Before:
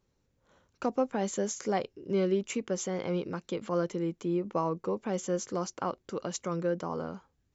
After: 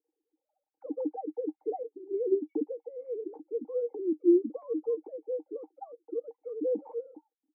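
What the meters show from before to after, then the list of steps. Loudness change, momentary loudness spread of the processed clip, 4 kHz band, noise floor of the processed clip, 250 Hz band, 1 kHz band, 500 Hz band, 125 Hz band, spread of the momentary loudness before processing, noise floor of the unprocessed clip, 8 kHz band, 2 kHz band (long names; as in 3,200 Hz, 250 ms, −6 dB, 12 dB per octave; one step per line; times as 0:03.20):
0.0 dB, 14 LU, below −35 dB, below −85 dBFS, +0.5 dB, −10.5 dB, +0.5 dB, below −30 dB, 6 LU, −75 dBFS, can't be measured, below −35 dB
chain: three sine waves on the formant tracks
formant resonators in series u
hollow resonant body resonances 310/470/780 Hz, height 18 dB, ringing for 55 ms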